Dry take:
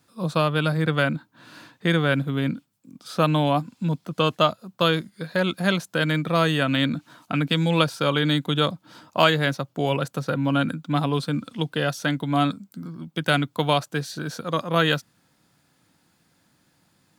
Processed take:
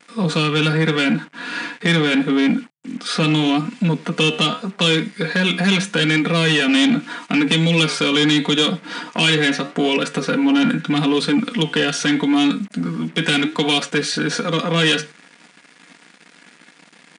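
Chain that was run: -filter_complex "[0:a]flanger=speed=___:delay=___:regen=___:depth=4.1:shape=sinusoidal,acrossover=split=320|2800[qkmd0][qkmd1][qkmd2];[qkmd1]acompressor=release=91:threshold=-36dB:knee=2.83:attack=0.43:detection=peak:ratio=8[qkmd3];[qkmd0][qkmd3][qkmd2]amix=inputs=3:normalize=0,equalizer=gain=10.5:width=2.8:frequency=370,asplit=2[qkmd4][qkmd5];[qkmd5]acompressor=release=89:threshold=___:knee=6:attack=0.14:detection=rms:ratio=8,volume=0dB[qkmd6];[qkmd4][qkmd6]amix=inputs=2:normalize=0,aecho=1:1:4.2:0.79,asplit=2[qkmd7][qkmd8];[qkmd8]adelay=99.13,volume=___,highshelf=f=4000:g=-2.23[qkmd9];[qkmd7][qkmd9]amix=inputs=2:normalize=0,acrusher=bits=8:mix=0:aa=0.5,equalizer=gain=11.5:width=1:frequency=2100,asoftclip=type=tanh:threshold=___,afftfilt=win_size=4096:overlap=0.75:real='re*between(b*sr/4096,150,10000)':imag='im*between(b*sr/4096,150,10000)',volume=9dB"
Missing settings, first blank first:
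0.8, 9.8, -70, -36dB, -26dB, -19dB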